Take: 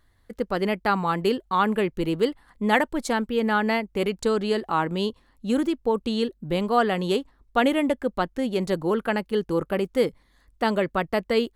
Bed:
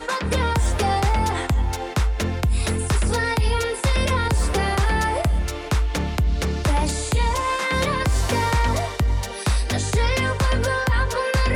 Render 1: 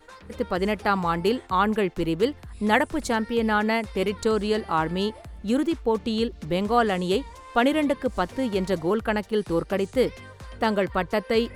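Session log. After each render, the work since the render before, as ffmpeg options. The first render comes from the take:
ffmpeg -i in.wav -i bed.wav -filter_complex "[1:a]volume=-21.5dB[link_01];[0:a][link_01]amix=inputs=2:normalize=0" out.wav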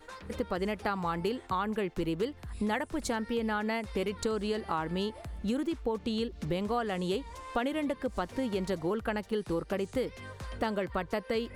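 ffmpeg -i in.wav -af "acompressor=threshold=-29dB:ratio=5" out.wav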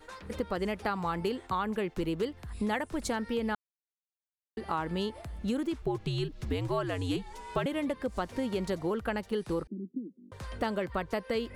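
ffmpeg -i in.wav -filter_complex "[0:a]asettb=1/sr,asplit=3[link_01][link_02][link_03];[link_01]atrim=end=5.824[link_04];[link_02]atrim=start=5.82:end=7.66,asetpts=PTS-STARTPTS,afade=type=in:duration=0.004:curve=qsin,afade=type=out:start_time=1.836:duration=0.004:curve=qsin,afreqshift=-84[link_05];[link_03]atrim=start=7.656[link_06];[link_04][link_05]acrossfade=duration=0.004:curve1=hsin:curve2=qsin[link_07];[link_07][link_06]acrossfade=duration=0.004:curve1=qsin:curve2=hsin,asettb=1/sr,asplit=3[link_08][link_09][link_10];[link_08]atrim=end=9.674[link_11];[link_09]atrim=start=9.67:end=10.32,asetpts=PTS-STARTPTS,afade=type=in:duration=0.004:curve=qsin,afade=type=out:start_time=0.646:duration=0.004:curve=qsin,asuperpass=centerf=250:order=8:qfactor=1.6[link_12];[link_10]atrim=start=10.316[link_13];[link_11][link_12]acrossfade=duration=0.004:curve1=hsin:curve2=qsin[link_14];[link_14][link_13]acrossfade=duration=0.004:curve1=qsin:curve2=hsin,asplit=3[link_15][link_16][link_17];[link_15]atrim=end=3.55,asetpts=PTS-STARTPTS,afade=type=out:start_time=3.546:duration=0.004:curve=hsin[link_18];[link_16]atrim=start=3.55:end=4.57,asetpts=PTS-STARTPTS,volume=0[link_19];[link_17]atrim=start=4.57,asetpts=PTS-STARTPTS,afade=type=in:duration=0.004:curve=hsin[link_20];[link_18][link_19][link_20]concat=n=3:v=0:a=1" out.wav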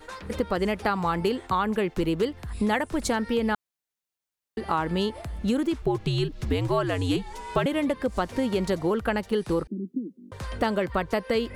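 ffmpeg -i in.wav -af "volume=6.5dB" out.wav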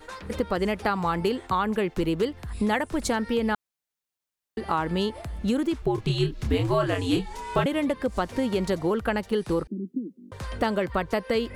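ffmpeg -i in.wav -filter_complex "[0:a]asettb=1/sr,asplit=3[link_01][link_02][link_03];[link_01]atrim=end=5.954[link_04];[link_02]atrim=start=5.95:end=7.64,asetpts=PTS-STARTPTS,afade=type=in:duration=0.004:curve=qsin,afade=type=out:start_time=1.686:duration=0.004:curve=qsin,asplit=2[link_05][link_06];[link_06]adelay=27,volume=-5dB[link_07];[link_05][link_07]amix=inputs=2:normalize=0,atrim=end_sample=74529[link_08];[link_03]atrim=start=7.636[link_09];[link_04][link_08]acrossfade=duration=0.004:curve1=hsin:curve2=qsin[link_10];[link_10][link_09]acrossfade=duration=0.004:curve1=qsin:curve2=hsin" out.wav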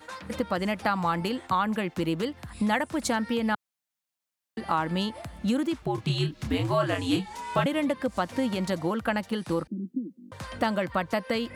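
ffmpeg -i in.wav -af "highpass=110,equalizer=frequency=410:width=5.8:gain=-13.5" out.wav

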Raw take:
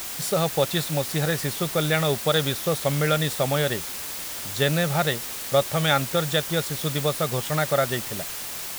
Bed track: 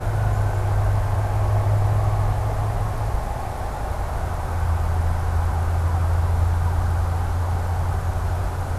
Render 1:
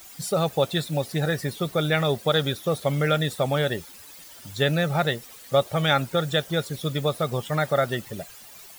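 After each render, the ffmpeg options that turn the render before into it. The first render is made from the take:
ffmpeg -i in.wav -af "afftdn=noise_reduction=15:noise_floor=-33" out.wav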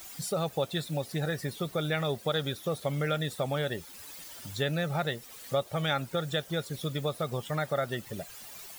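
ffmpeg -i in.wav -af "acompressor=threshold=-40dB:ratio=1.5" out.wav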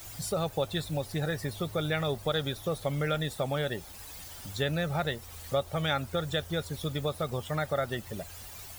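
ffmpeg -i in.wav -i bed.wav -filter_complex "[1:a]volume=-28dB[link_01];[0:a][link_01]amix=inputs=2:normalize=0" out.wav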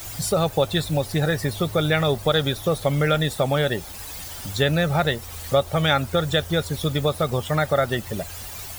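ffmpeg -i in.wav -af "volume=9.5dB" out.wav

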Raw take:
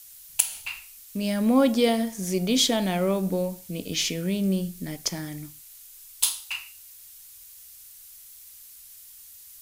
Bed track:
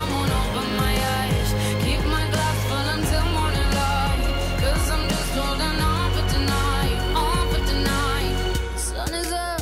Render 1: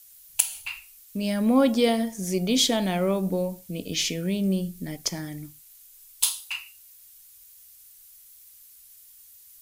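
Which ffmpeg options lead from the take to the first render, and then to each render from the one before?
ffmpeg -i in.wav -af "afftdn=noise_reduction=6:noise_floor=-48" out.wav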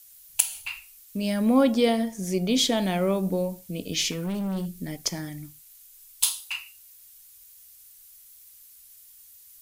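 ffmpeg -i in.wav -filter_complex "[0:a]asettb=1/sr,asplit=3[link_01][link_02][link_03];[link_01]atrim=end=1.634[link_04];[link_02]atrim=start=1.63:end=2.77,asetpts=PTS-STARTPTS,afade=type=in:duration=0.004:curve=qsin,afade=type=out:start_time=1.136:duration=0.004:curve=qsin,equalizer=frequency=13000:width_type=o:width=2.2:gain=-3.5[link_05];[link_03]atrim=start=2.766[link_06];[link_04][link_05]acrossfade=duration=0.004:curve1=hsin:curve2=qsin[link_07];[link_07][link_06]acrossfade=duration=0.004:curve1=qsin:curve2=hsin,asettb=1/sr,asplit=3[link_08][link_09][link_10];[link_08]atrim=end=4.114[link_11];[link_09]atrim=start=4.11:end=4.76,asetpts=PTS-STARTPTS,afade=type=in:duration=0.004:curve=qsin,afade=type=out:start_time=0.646:duration=0.004:curve=qsin,asoftclip=type=hard:threshold=-26.5dB[link_12];[link_10]atrim=start=4.756[link_13];[link_11][link_12]acrossfade=duration=0.004:curve1=hsin:curve2=qsin[link_14];[link_14][link_13]acrossfade=duration=0.004:curve1=qsin:curve2=hsin,asettb=1/sr,asplit=3[link_15][link_16][link_17];[link_15]atrim=end=5.294[link_18];[link_16]atrim=start=5.29:end=6.29,asetpts=PTS-STARTPTS,afade=type=in:duration=0.004:curve=qsin,afade=type=out:start_time=0.996:duration=0.004:curve=qsin,equalizer=frequency=440:width_type=o:width=0.57:gain=-11[link_19];[link_17]atrim=start=6.286[link_20];[link_18][link_19]acrossfade=duration=0.004:curve1=hsin:curve2=qsin[link_21];[link_21][link_20]acrossfade=duration=0.004:curve1=qsin:curve2=hsin" out.wav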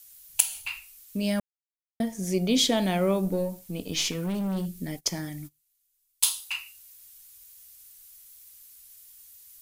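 ffmpeg -i in.wav -filter_complex "[0:a]asettb=1/sr,asplit=3[link_01][link_02][link_03];[link_01]atrim=end=3.254[link_04];[link_02]atrim=start=3.25:end=4.15,asetpts=PTS-STARTPTS,afade=type=in:duration=0.004:curve=qsin,afade=type=out:start_time=0.896:duration=0.004:curve=qsin,aeval=exprs='if(lt(val(0),0),0.708*val(0),val(0))':channel_layout=same[link_05];[link_03]atrim=start=4.146[link_06];[link_04][link_05]acrossfade=duration=0.004:curve1=hsin:curve2=qsin[link_07];[link_07][link_06]acrossfade=duration=0.004:curve1=qsin:curve2=hsin,asplit=3[link_08][link_09][link_10];[link_08]afade=type=out:start_time=4.96:duration=0.02[link_11];[link_09]agate=range=-22dB:threshold=-43dB:ratio=16:release=100:detection=peak,afade=type=in:start_time=4.96:duration=0.02,afade=type=out:start_time=6.26:duration=0.02[link_12];[link_10]afade=type=in:start_time=6.26:duration=0.02[link_13];[link_11][link_12][link_13]amix=inputs=3:normalize=0,asplit=3[link_14][link_15][link_16];[link_14]atrim=end=1.4,asetpts=PTS-STARTPTS,afade=type=out:start_time=1.396:duration=0.004:curve=hsin[link_17];[link_15]atrim=start=1.4:end=2,asetpts=PTS-STARTPTS,volume=0[link_18];[link_16]atrim=start=2,asetpts=PTS-STARTPTS,afade=type=in:duration=0.004:curve=hsin[link_19];[link_17][link_18][link_19]concat=n=3:v=0:a=1" out.wav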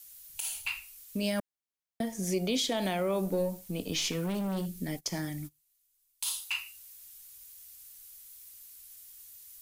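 ffmpeg -i in.wav -filter_complex "[0:a]acrossover=split=320|3000[link_01][link_02][link_03];[link_01]acompressor=threshold=-33dB:ratio=6[link_04];[link_04][link_02][link_03]amix=inputs=3:normalize=0,alimiter=limit=-21dB:level=0:latency=1:release=73" out.wav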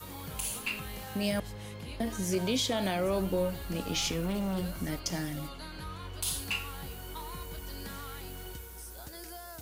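ffmpeg -i in.wav -i bed.wav -filter_complex "[1:a]volume=-20.5dB[link_01];[0:a][link_01]amix=inputs=2:normalize=0" out.wav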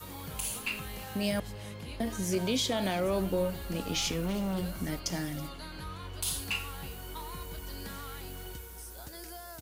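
ffmpeg -i in.wav -af "aecho=1:1:326:0.075" out.wav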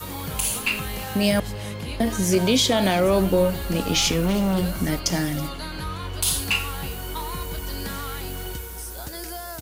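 ffmpeg -i in.wav -af "volume=10.5dB" out.wav

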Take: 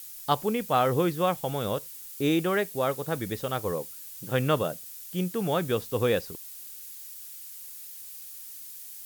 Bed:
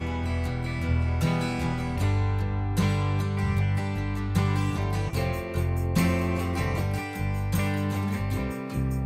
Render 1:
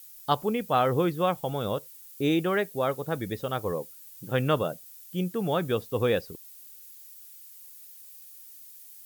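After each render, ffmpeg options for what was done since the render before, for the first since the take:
ffmpeg -i in.wav -af "afftdn=noise_reduction=8:noise_floor=-43" out.wav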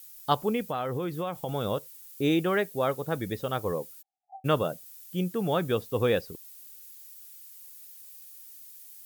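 ffmpeg -i in.wav -filter_complex "[0:a]asettb=1/sr,asplit=3[link_01][link_02][link_03];[link_01]atrim=end=0.674[link_04];[link_02]atrim=start=0.67:end=1.49,asetpts=PTS-STARTPTS,afade=type=in:duration=0.004:curve=qsin,afade=type=out:start_time=0.816:duration=0.004:curve=qsin,acompressor=threshold=-27dB:ratio=6:attack=3.2:release=140:knee=1:detection=peak[link_05];[link_03]atrim=start=1.486[link_06];[link_04][link_05]acrossfade=duration=0.004:curve1=hsin:curve2=qsin[link_07];[link_07][link_06]acrossfade=duration=0.004:curve1=qsin:curve2=hsin,asplit=3[link_08][link_09][link_10];[link_08]afade=type=out:start_time=4.01:duration=0.02[link_11];[link_09]asuperpass=centerf=760:order=8:qfactor=6.4,afade=type=in:start_time=4.01:duration=0.02,afade=type=out:start_time=4.44:duration=0.02[link_12];[link_10]afade=type=in:start_time=4.44:duration=0.02[link_13];[link_11][link_12][link_13]amix=inputs=3:normalize=0" out.wav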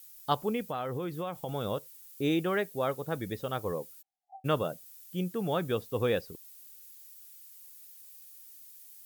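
ffmpeg -i in.wav -af "volume=-3.5dB" out.wav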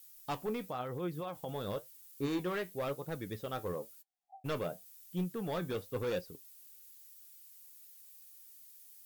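ffmpeg -i in.wav -af "asoftclip=type=hard:threshold=-27dB,flanger=delay=5.5:depth=6.2:regen=65:speed=0.97:shape=sinusoidal" out.wav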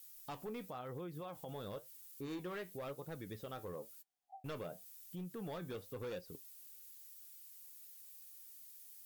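ffmpeg -i in.wav -af "acompressor=threshold=-38dB:ratio=6,alimiter=level_in=13.5dB:limit=-24dB:level=0:latency=1:release=162,volume=-13.5dB" out.wav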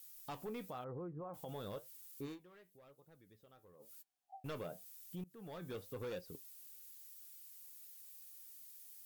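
ffmpeg -i in.wav -filter_complex "[0:a]asettb=1/sr,asplit=3[link_01][link_02][link_03];[link_01]atrim=end=0.844[link_04];[link_02]atrim=start=0.84:end=1.34,asetpts=PTS-STARTPTS,afade=type=in:duration=0.004:curve=qsin,afade=type=out:start_time=0.496:duration=0.004:curve=qsin,lowpass=frequency=1300:width=0.5412,lowpass=frequency=1300:width=1.3066[link_05];[link_03]atrim=start=1.336[link_06];[link_04][link_05]acrossfade=duration=0.004:curve1=hsin:curve2=qsin[link_07];[link_07][link_06]acrossfade=duration=0.004:curve1=qsin:curve2=hsin,asplit=4[link_08][link_09][link_10][link_11];[link_08]atrim=end=2.39,asetpts=PTS-STARTPTS,afade=type=out:start_time=2.25:duration=0.14:silence=0.125893[link_12];[link_09]atrim=start=2.39:end=3.79,asetpts=PTS-STARTPTS,volume=-18dB[link_13];[link_10]atrim=start=3.79:end=5.24,asetpts=PTS-STARTPTS,afade=type=in:duration=0.14:silence=0.125893,afade=type=out:start_time=1.446:duration=0.004:curve=hsin:silence=0.0891251[link_14];[link_11]atrim=start=5.24,asetpts=PTS-STARTPTS,afade=type=in:duration=0.53:silence=0.0891251[link_15];[link_12][link_13][link_14][link_15]concat=n=4:v=0:a=1" out.wav

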